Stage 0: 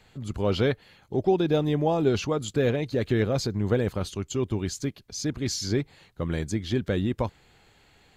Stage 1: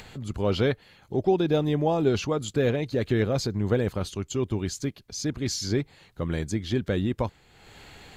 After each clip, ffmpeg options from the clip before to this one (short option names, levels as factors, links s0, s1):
-af "acompressor=mode=upward:threshold=0.0158:ratio=2.5"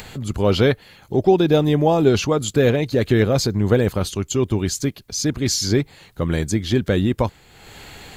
-af "highshelf=f=10000:g=10,volume=2.37"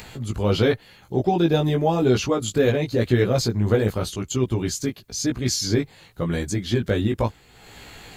-af "flanger=delay=16:depth=2.8:speed=0.92"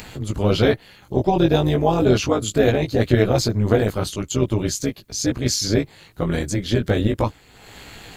-af "tremolo=f=210:d=0.71,volume=1.88"